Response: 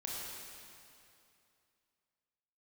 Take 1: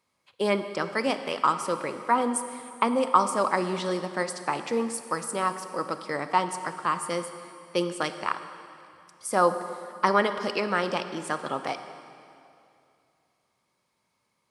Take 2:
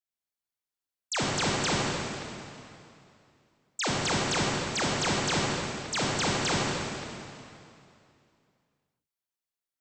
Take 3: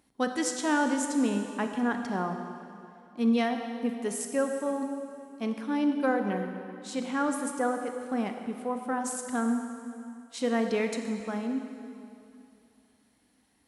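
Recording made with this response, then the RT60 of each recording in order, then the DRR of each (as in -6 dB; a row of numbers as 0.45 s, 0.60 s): 2; 2.6 s, 2.6 s, 2.7 s; 9.5 dB, -5.0 dB, 5.0 dB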